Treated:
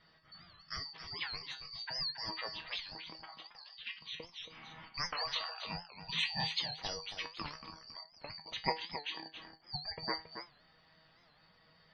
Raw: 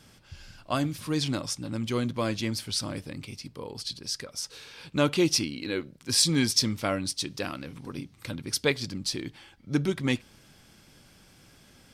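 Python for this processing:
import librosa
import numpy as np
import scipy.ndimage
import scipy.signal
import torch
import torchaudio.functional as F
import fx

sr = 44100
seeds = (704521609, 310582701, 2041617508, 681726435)

y = fx.band_shuffle(x, sr, order='2341')
y = scipy.signal.sosfilt(scipy.signal.butter(2, 2600.0, 'lowpass', fs=sr, output='sos'), y)
y = fx.spec_gate(y, sr, threshold_db=-20, keep='strong')
y = fx.comb_fb(y, sr, f0_hz=160.0, decay_s=0.24, harmonics='all', damping=0.0, mix_pct=80)
y = y + 10.0 ** (-9.5 / 20.0) * np.pad(y, (int(275 * sr / 1000.0), 0))[:len(y)]
y = fx.record_warp(y, sr, rpm=78.0, depth_cents=160.0)
y = y * librosa.db_to_amplitude(4.0)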